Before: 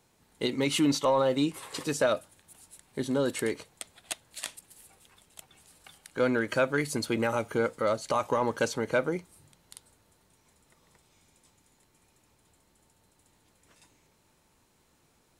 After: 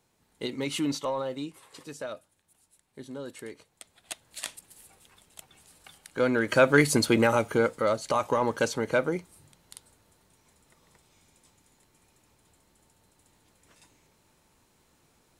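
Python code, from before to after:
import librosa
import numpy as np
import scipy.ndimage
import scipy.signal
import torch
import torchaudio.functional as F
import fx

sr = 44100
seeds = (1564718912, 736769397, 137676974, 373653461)

y = fx.gain(x, sr, db=fx.line((0.93, -4.0), (1.66, -11.5), (3.53, -11.5), (4.38, 1.0), (6.32, 1.0), (6.79, 9.0), (7.9, 1.5)))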